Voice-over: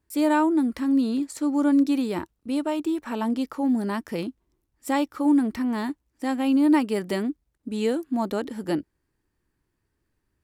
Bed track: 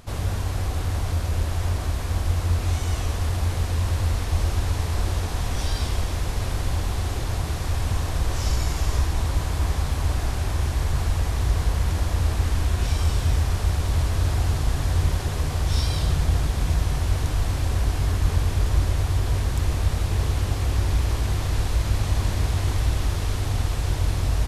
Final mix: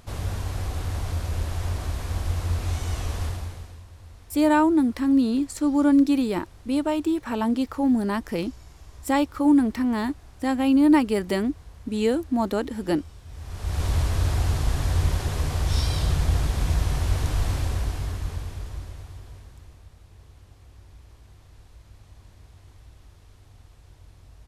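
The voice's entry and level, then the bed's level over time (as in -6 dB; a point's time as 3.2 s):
4.20 s, +2.0 dB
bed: 3.25 s -3.5 dB
3.87 s -23 dB
13.25 s -23 dB
13.82 s -1 dB
17.53 s -1 dB
19.9 s -27 dB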